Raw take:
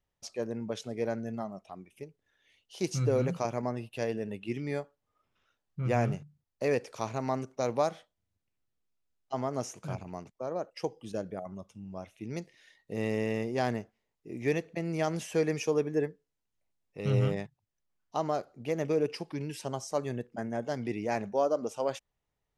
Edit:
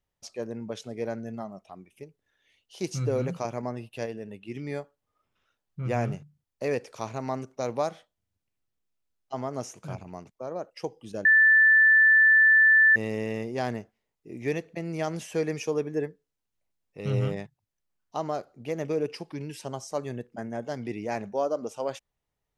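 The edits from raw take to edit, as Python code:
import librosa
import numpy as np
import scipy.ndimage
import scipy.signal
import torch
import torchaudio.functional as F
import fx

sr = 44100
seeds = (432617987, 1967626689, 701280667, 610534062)

y = fx.edit(x, sr, fx.clip_gain(start_s=4.06, length_s=0.49, db=-3.5),
    fx.bleep(start_s=11.25, length_s=1.71, hz=1760.0, db=-14.5), tone=tone)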